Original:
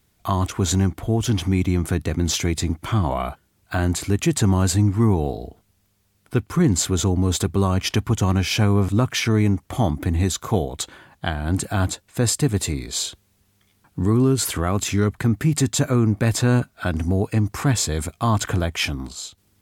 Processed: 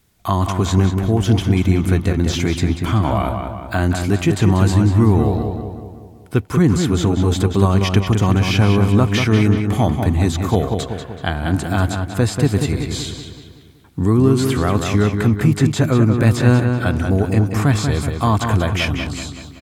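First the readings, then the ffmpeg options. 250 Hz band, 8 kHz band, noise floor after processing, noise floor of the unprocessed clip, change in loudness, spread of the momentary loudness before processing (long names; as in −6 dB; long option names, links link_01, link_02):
+5.0 dB, −5.0 dB, −41 dBFS, −65 dBFS, +4.5 dB, 8 LU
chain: -filter_complex "[0:a]acrossover=split=3800[link_01][link_02];[link_02]acompressor=threshold=-34dB:ratio=4:attack=1:release=60[link_03];[link_01][link_03]amix=inputs=2:normalize=0,asplit=2[link_04][link_05];[link_05]adelay=189,lowpass=frequency=3900:poles=1,volume=-5.5dB,asplit=2[link_06][link_07];[link_07]adelay=189,lowpass=frequency=3900:poles=1,volume=0.53,asplit=2[link_08][link_09];[link_09]adelay=189,lowpass=frequency=3900:poles=1,volume=0.53,asplit=2[link_10][link_11];[link_11]adelay=189,lowpass=frequency=3900:poles=1,volume=0.53,asplit=2[link_12][link_13];[link_13]adelay=189,lowpass=frequency=3900:poles=1,volume=0.53,asplit=2[link_14][link_15];[link_15]adelay=189,lowpass=frequency=3900:poles=1,volume=0.53,asplit=2[link_16][link_17];[link_17]adelay=189,lowpass=frequency=3900:poles=1,volume=0.53[link_18];[link_04][link_06][link_08][link_10][link_12][link_14][link_16][link_18]amix=inputs=8:normalize=0,volume=3.5dB"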